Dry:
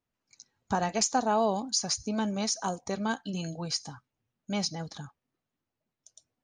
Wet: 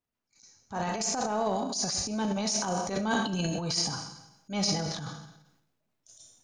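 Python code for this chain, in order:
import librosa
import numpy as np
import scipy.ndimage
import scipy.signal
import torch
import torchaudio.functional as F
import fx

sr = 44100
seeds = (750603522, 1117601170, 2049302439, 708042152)

y = fx.rev_schroeder(x, sr, rt60_s=0.9, comb_ms=26, drr_db=7.0)
y = fx.rider(y, sr, range_db=10, speed_s=0.5)
y = fx.transient(y, sr, attack_db=-10, sustain_db=9)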